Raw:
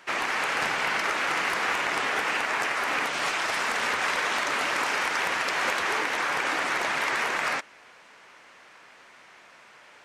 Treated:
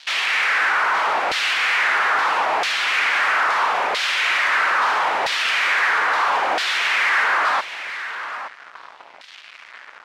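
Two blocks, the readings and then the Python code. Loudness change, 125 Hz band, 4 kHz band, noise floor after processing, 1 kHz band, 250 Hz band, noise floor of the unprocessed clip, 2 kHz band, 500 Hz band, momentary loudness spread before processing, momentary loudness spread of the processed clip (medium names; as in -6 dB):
+7.5 dB, no reading, +8.0 dB, -44 dBFS, +8.5 dB, -3.0 dB, -53 dBFS, +8.0 dB, +4.0 dB, 1 LU, 9 LU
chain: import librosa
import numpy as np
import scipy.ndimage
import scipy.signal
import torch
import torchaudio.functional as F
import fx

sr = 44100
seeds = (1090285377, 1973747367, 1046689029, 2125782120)

y = scipy.signal.sosfilt(scipy.signal.butter(2, 240.0, 'highpass', fs=sr, output='sos'), x)
y = fx.high_shelf(y, sr, hz=2900.0, db=-8.0)
y = fx.fuzz(y, sr, gain_db=42.0, gate_db=-51.0)
y = fx.filter_lfo_bandpass(y, sr, shape='saw_down', hz=0.76, low_hz=680.0, high_hz=3800.0, q=2.0)
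y = y + 10.0 ** (-11.0 / 20.0) * np.pad(y, (int(871 * sr / 1000.0), 0))[:len(y)]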